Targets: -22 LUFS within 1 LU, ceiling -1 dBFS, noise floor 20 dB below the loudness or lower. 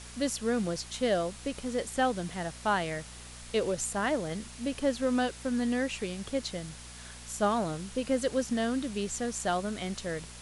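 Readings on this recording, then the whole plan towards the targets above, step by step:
hum 60 Hz; highest harmonic 240 Hz; hum level -45 dBFS; noise floor -46 dBFS; noise floor target -52 dBFS; loudness -31.5 LUFS; peak level -15.5 dBFS; loudness target -22.0 LUFS
-> de-hum 60 Hz, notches 4; noise reduction 6 dB, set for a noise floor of -46 dBFS; trim +9.5 dB

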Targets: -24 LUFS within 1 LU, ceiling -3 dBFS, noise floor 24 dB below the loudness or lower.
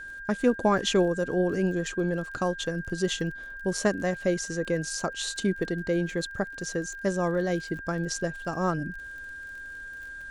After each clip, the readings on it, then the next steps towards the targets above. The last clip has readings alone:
tick rate 38 per s; steady tone 1.6 kHz; tone level -38 dBFS; loudness -28.5 LUFS; peak level -10.5 dBFS; loudness target -24.0 LUFS
-> de-click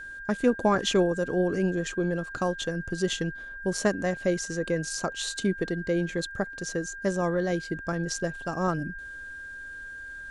tick rate 0 per s; steady tone 1.6 kHz; tone level -38 dBFS
-> band-stop 1.6 kHz, Q 30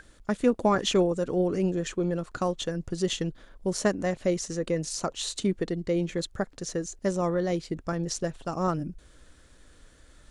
steady tone not found; loudness -29.0 LUFS; peak level -10.5 dBFS; loudness target -24.0 LUFS
-> trim +5 dB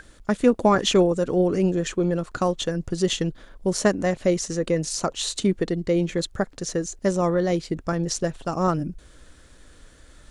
loudness -24.0 LUFS; peak level -5.5 dBFS; noise floor -51 dBFS

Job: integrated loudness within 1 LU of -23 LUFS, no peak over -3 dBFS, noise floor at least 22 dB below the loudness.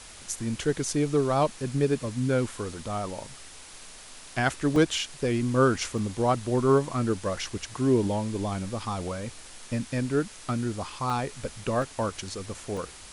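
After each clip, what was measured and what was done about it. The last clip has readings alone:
dropouts 5; longest dropout 1.8 ms; noise floor -46 dBFS; noise floor target -50 dBFS; loudness -28.0 LUFS; peak level -10.5 dBFS; loudness target -23.0 LUFS
-> interpolate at 4.76/5.98/11.10/11.82/12.77 s, 1.8 ms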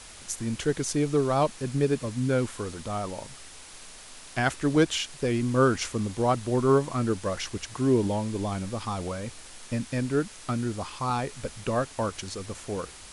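dropouts 0; noise floor -46 dBFS; noise floor target -50 dBFS
-> noise reduction 6 dB, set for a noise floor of -46 dBFS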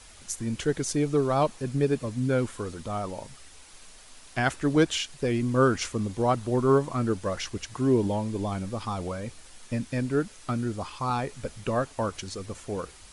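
noise floor -50 dBFS; loudness -28.0 LUFS; peak level -10.5 dBFS; loudness target -23.0 LUFS
-> trim +5 dB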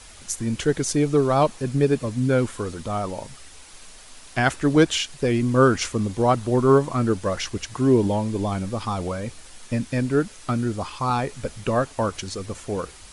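loudness -23.0 LUFS; peak level -5.5 dBFS; noise floor -45 dBFS

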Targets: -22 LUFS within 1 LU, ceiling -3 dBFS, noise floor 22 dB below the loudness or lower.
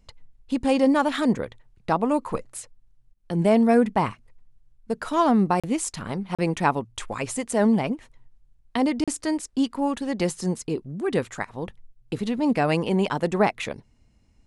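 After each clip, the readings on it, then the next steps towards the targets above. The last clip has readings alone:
dropouts 3; longest dropout 36 ms; loudness -24.5 LUFS; peak level -6.5 dBFS; loudness target -22.0 LUFS
-> interpolate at 5.60/6.35/9.04 s, 36 ms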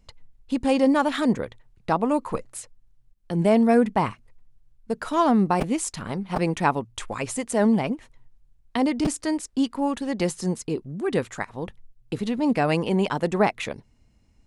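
dropouts 0; loudness -24.5 LUFS; peak level -6.5 dBFS; loudness target -22.0 LUFS
-> trim +2.5 dB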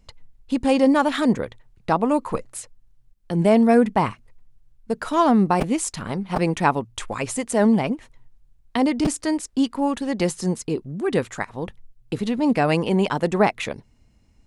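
loudness -22.0 LUFS; peak level -4.0 dBFS; noise floor -57 dBFS

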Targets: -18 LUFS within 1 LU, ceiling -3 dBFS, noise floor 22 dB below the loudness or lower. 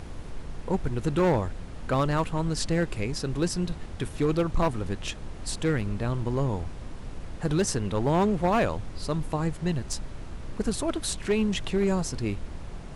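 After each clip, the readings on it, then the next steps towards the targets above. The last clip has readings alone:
clipped samples 1.4%; clipping level -18.0 dBFS; noise floor -40 dBFS; noise floor target -51 dBFS; loudness -28.5 LUFS; peak level -18.0 dBFS; loudness target -18.0 LUFS
-> clip repair -18 dBFS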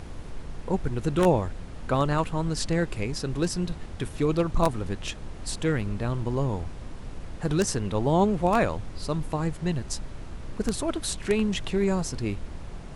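clipped samples 0.0%; noise floor -40 dBFS; noise floor target -50 dBFS
-> noise print and reduce 10 dB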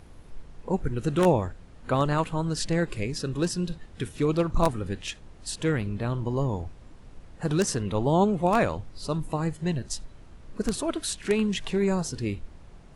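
noise floor -49 dBFS; noise floor target -50 dBFS
-> noise print and reduce 6 dB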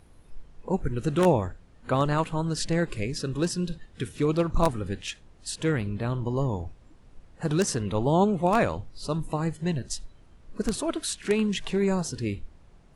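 noise floor -54 dBFS; loudness -27.5 LUFS; peak level -9.0 dBFS; loudness target -18.0 LUFS
-> trim +9.5 dB; peak limiter -3 dBFS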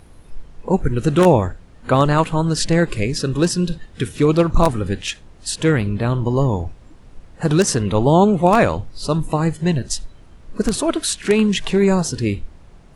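loudness -18.5 LUFS; peak level -3.0 dBFS; noise floor -45 dBFS

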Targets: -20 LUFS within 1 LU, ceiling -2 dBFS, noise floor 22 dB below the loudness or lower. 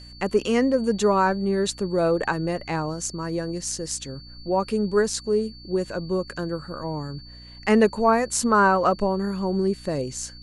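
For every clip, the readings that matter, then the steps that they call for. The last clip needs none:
hum 60 Hz; highest harmonic 300 Hz; hum level -44 dBFS; steady tone 4.5 kHz; tone level -45 dBFS; loudness -24.0 LUFS; peak level -7.5 dBFS; loudness target -20.0 LUFS
-> de-hum 60 Hz, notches 5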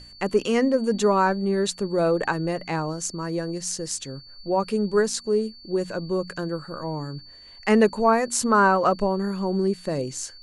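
hum not found; steady tone 4.5 kHz; tone level -45 dBFS
-> band-stop 4.5 kHz, Q 30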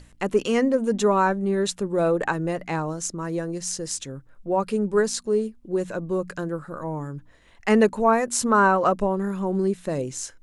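steady tone not found; loudness -24.0 LUFS; peak level -7.5 dBFS; loudness target -20.0 LUFS
-> trim +4 dB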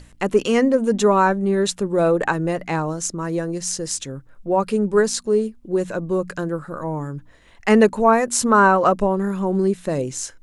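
loudness -20.0 LUFS; peak level -3.5 dBFS; noise floor -49 dBFS

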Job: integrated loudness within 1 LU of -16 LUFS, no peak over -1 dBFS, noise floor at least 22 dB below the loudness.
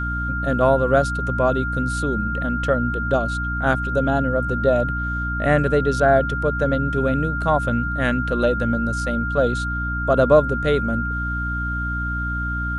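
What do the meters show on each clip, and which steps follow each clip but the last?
hum 60 Hz; highest harmonic 300 Hz; hum level -24 dBFS; steady tone 1.4 kHz; tone level -25 dBFS; loudness -21.0 LUFS; peak level -2.5 dBFS; loudness target -16.0 LUFS
-> de-hum 60 Hz, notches 5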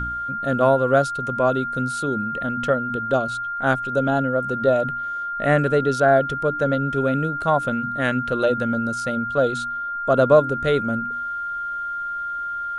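hum not found; steady tone 1.4 kHz; tone level -25 dBFS
-> band-stop 1.4 kHz, Q 30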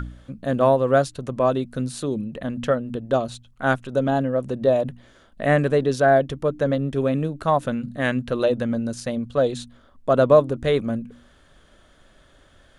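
steady tone not found; loudness -22.5 LUFS; peak level -3.0 dBFS; loudness target -16.0 LUFS
-> trim +6.5 dB; peak limiter -1 dBFS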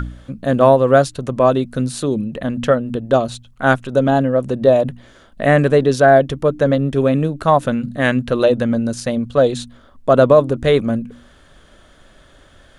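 loudness -16.0 LUFS; peak level -1.0 dBFS; noise floor -49 dBFS

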